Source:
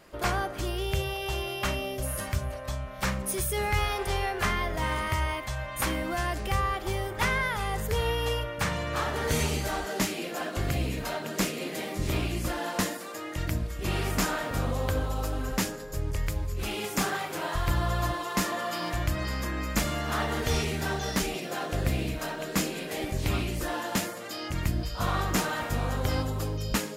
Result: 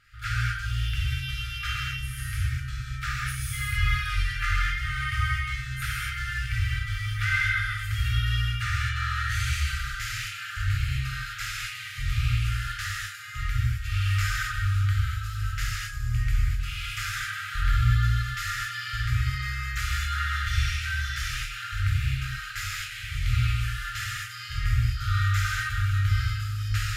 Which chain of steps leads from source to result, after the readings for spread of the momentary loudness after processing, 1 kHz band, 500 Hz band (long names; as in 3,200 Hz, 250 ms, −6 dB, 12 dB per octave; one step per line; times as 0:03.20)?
7 LU, −4.0 dB, below −40 dB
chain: brick-wall band-stop 130–1,200 Hz
low-pass filter 2,600 Hz 6 dB per octave
reverb whose tail is shaped and stops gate 280 ms flat, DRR −6.5 dB
level −1.5 dB